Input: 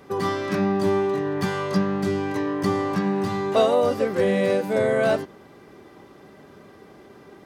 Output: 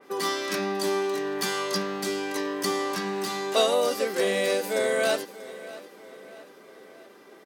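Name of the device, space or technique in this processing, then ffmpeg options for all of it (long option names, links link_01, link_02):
smiley-face EQ: -af "highpass=300,highpass=frequency=300:poles=1,lowshelf=frequency=120:gain=4.5,equalizer=frequency=790:width_type=o:width=1.5:gain=-4,highshelf=frequency=8600:gain=5,aecho=1:1:637|1274|1911|2548|3185:0.141|0.0735|0.0382|0.0199|0.0103,adynamicequalizer=threshold=0.00501:dfrequency=2900:dqfactor=0.7:tfrequency=2900:tqfactor=0.7:attack=5:release=100:ratio=0.375:range=4:mode=boostabove:tftype=highshelf"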